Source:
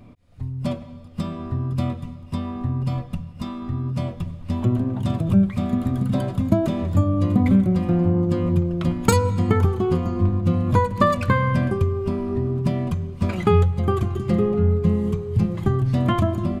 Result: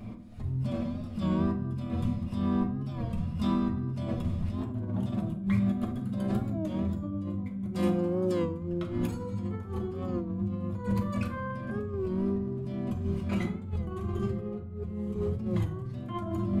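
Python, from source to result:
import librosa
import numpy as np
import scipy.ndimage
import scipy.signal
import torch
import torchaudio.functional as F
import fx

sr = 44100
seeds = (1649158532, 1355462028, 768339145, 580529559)

y = fx.bass_treble(x, sr, bass_db=-11, treble_db=9, at=(7.73, 8.45), fade=0.02)
y = fx.over_compress(y, sr, threshold_db=-30.0, ratio=-1.0)
y = fx.rev_fdn(y, sr, rt60_s=0.62, lf_ratio=1.45, hf_ratio=0.55, size_ms=28.0, drr_db=1.5)
y = fx.record_warp(y, sr, rpm=33.33, depth_cents=100.0)
y = y * librosa.db_to_amplitude(-6.5)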